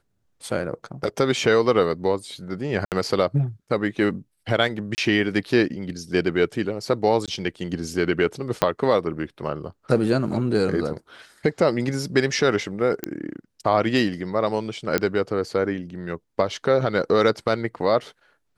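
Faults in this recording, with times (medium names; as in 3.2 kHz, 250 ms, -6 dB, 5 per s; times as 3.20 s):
2.85–2.92 s: dropout 68 ms
4.95–4.98 s: dropout 29 ms
7.26–7.28 s: dropout 17 ms
8.62 s: pop -4 dBFS
13.04 s: pop -10 dBFS
14.98 s: pop -6 dBFS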